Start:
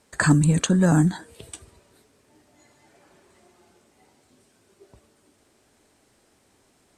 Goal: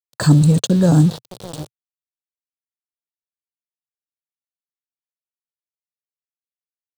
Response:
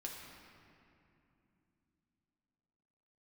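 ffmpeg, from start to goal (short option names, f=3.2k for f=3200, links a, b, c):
-filter_complex "[0:a]asplit=2[a][b];[b]adelay=612,lowpass=f=3.2k:p=1,volume=-16dB,asplit=2[c][d];[d]adelay=612,lowpass=f=3.2k:p=1,volume=0.24[e];[a][c][e]amix=inputs=3:normalize=0,aeval=exprs='val(0)*gte(abs(val(0)),0.0376)':c=same,equalizer=f=125:t=o:w=1:g=11,equalizer=f=500:t=o:w=1:g=8,equalizer=f=2k:t=o:w=1:g=-9,equalizer=f=4k:t=o:w=1:g=11,volume=-1.5dB"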